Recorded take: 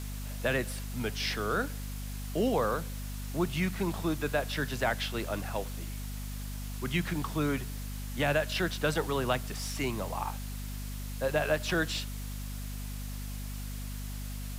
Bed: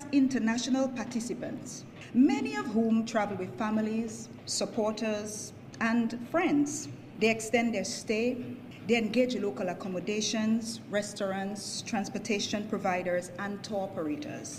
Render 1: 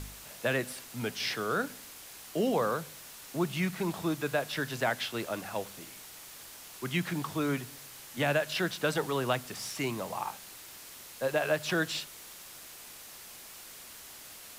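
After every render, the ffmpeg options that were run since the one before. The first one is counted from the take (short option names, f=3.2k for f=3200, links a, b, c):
-af "bandreject=f=50:t=h:w=4,bandreject=f=100:t=h:w=4,bandreject=f=150:t=h:w=4,bandreject=f=200:t=h:w=4,bandreject=f=250:t=h:w=4"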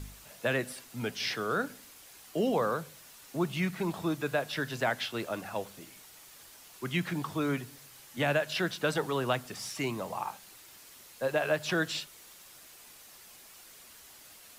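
-af "afftdn=nr=6:nf=-49"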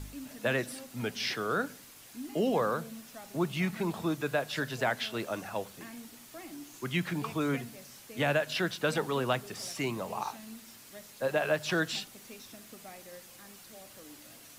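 -filter_complex "[1:a]volume=-19.5dB[a];[0:a][a]amix=inputs=2:normalize=0"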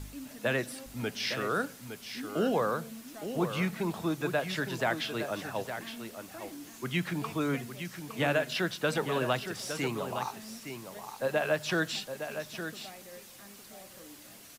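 -af "aecho=1:1:862:0.355"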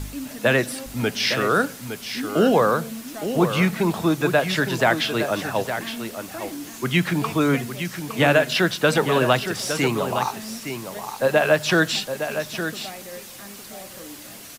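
-af "volume=11dB"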